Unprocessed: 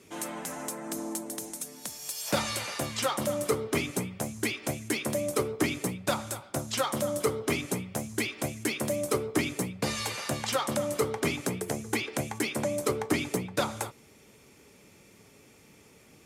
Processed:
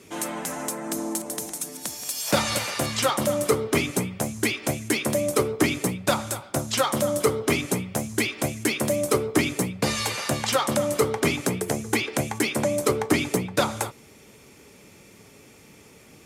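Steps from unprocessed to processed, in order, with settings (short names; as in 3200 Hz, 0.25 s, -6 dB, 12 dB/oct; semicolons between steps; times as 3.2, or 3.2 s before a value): 0.93–3.1 reverse delay 0.254 s, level -11 dB; gain +6 dB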